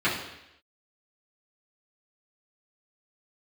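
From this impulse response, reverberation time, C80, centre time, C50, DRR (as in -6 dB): 0.85 s, 8.0 dB, 41 ms, 5.0 dB, -11.0 dB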